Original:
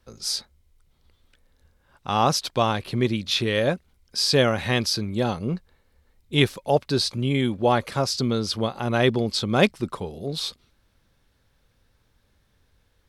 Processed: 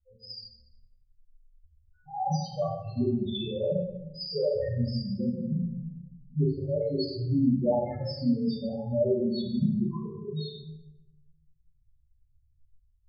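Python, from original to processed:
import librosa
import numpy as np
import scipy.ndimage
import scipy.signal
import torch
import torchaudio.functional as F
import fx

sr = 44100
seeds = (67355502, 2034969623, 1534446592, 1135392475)

y = fx.spec_topn(x, sr, count=1)
y = fx.room_shoebox(y, sr, seeds[0], volume_m3=310.0, walls='mixed', distance_m=2.7)
y = y * librosa.db_to_amplitude(-5.5)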